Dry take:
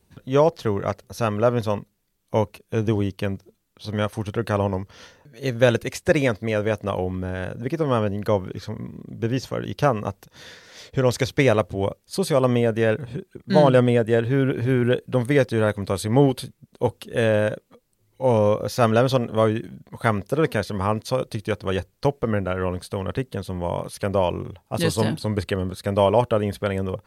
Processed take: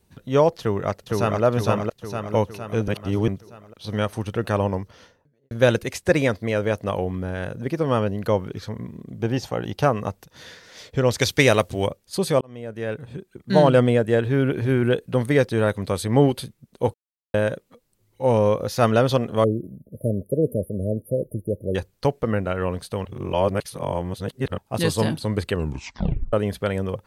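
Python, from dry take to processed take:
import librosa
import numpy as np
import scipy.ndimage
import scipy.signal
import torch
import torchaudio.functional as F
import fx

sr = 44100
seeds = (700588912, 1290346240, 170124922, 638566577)

y = fx.echo_throw(x, sr, start_s=0.6, length_s=0.83, ms=460, feedback_pct=55, wet_db=-1.5)
y = fx.studio_fade_out(y, sr, start_s=4.74, length_s=0.77)
y = fx.peak_eq(y, sr, hz=780.0, db=11.5, octaves=0.32, at=(9.22, 9.83))
y = fx.high_shelf(y, sr, hz=2300.0, db=11.0, at=(11.21, 11.87))
y = fx.brickwall_bandstop(y, sr, low_hz=650.0, high_hz=9400.0, at=(19.44, 21.75))
y = fx.edit(y, sr, fx.reverse_span(start_s=2.88, length_s=0.4),
    fx.fade_in_span(start_s=12.41, length_s=1.15),
    fx.silence(start_s=16.94, length_s=0.4),
    fx.reverse_span(start_s=23.05, length_s=1.53),
    fx.tape_stop(start_s=25.52, length_s=0.81), tone=tone)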